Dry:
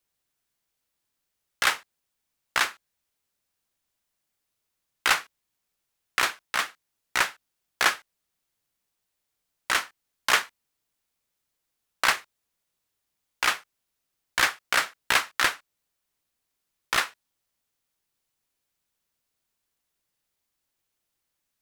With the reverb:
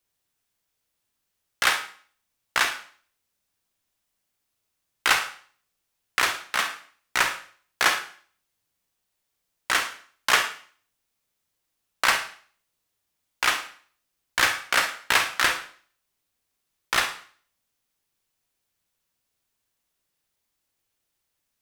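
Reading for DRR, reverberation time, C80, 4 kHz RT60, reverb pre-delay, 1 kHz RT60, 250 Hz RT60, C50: 5.5 dB, 0.50 s, 13.5 dB, 0.45 s, 37 ms, 0.45 s, 0.50 s, 8.0 dB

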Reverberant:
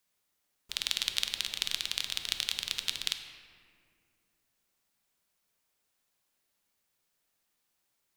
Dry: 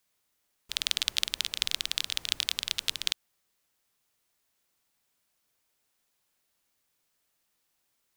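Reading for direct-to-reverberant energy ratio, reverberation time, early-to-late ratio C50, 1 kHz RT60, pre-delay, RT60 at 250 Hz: 6.0 dB, 2.1 s, 7.5 dB, 1.9 s, 5 ms, 3.1 s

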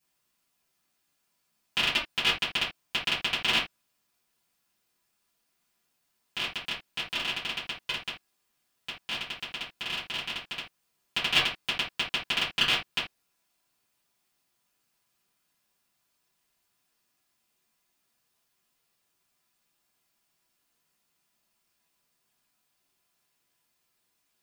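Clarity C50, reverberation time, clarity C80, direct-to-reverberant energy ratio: 7.5 dB, not exponential, 17.0 dB, -11.5 dB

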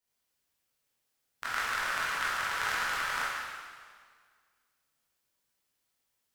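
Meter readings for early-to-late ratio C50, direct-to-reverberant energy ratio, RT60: -3.0 dB, -9.5 dB, 1.8 s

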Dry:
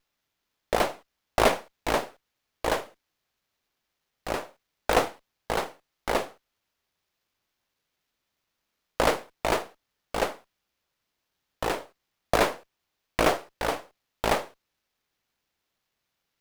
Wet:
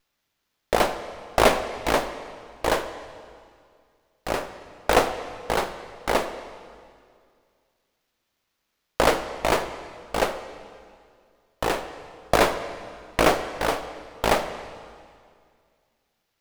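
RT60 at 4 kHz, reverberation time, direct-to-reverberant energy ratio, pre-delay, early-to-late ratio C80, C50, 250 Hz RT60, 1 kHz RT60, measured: 1.9 s, 2.1 s, 10.0 dB, 32 ms, 11.5 dB, 10.5 dB, 2.3 s, 2.1 s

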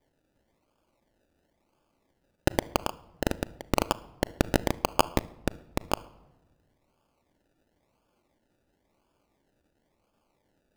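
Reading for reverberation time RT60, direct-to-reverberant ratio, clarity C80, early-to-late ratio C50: 1.1 s, 12.0 dB, 22.5 dB, 19.5 dB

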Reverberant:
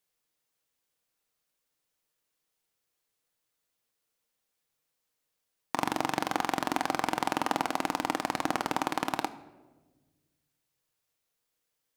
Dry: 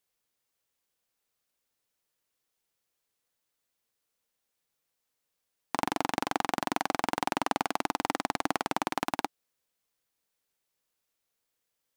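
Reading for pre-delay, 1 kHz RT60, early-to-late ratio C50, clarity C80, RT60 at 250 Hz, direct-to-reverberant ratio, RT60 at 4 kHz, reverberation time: 6 ms, 1.1 s, 15.0 dB, 17.0 dB, 1.7 s, 9.5 dB, 0.70 s, 1.3 s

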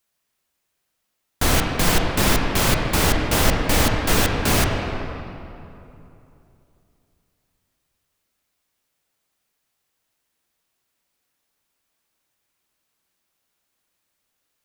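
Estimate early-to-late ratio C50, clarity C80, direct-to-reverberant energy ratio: 2.0 dB, 3.0 dB, 1.0 dB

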